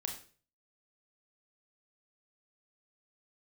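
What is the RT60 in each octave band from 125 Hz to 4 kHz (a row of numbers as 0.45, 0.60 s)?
0.60, 0.45, 0.45, 0.35, 0.40, 0.40 s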